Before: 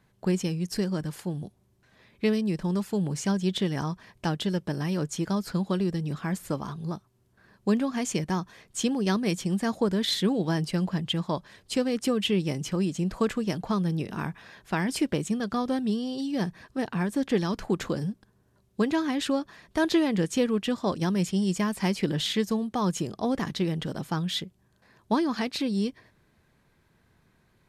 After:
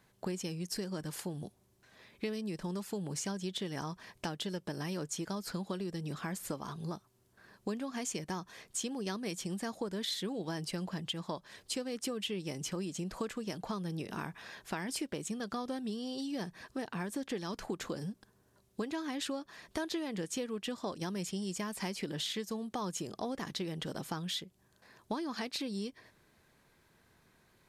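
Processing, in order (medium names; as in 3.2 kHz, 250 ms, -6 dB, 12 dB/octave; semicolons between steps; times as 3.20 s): tone controls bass -6 dB, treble +4 dB; compression 4:1, threshold -36 dBFS, peak gain reduction 14 dB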